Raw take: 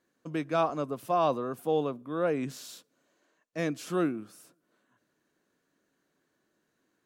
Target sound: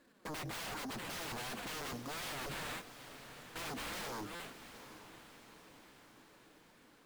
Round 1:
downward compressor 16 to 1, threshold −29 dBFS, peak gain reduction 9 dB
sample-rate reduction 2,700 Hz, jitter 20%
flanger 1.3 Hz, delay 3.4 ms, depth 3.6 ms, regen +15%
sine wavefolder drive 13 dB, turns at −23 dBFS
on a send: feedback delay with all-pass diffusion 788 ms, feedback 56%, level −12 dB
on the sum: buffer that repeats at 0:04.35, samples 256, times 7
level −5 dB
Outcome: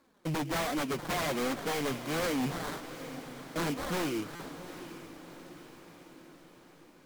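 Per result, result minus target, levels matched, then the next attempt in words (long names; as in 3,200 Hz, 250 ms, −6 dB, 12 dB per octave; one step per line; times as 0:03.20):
sine wavefolder: distortion −22 dB; sample-rate reduction: distortion +6 dB
downward compressor 16 to 1, threshold −29 dBFS, peak gain reduction 9 dB
sample-rate reduction 2,700 Hz, jitter 20%
flanger 1.3 Hz, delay 3.4 ms, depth 3.6 ms, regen +15%
sine wavefolder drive 13 dB, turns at −34.5 dBFS
on a send: feedback delay with all-pass diffusion 788 ms, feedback 56%, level −12 dB
on the sum: buffer that repeats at 0:04.35, samples 256, times 7
level −5 dB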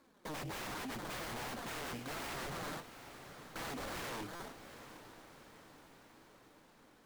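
sample-rate reduction: distortion +6 dB
downward compressor 16 to 1, threshold −29 dBFS, peak gain reduction 9 dB
sample-rate reduction 5,800 Hz, jitter 20%
flanger 1.3 Hz, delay 3.4 ms, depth 3.6 ms, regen +15%
sine wavefolder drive 13 dB, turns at −34.5 dBFS
on a send: feedback delay with all-pass diffusion 788 ms, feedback 56%, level −12 dB
on the sum: buffer that repeats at 0:04.35, samples 256, times 7
level −5 dB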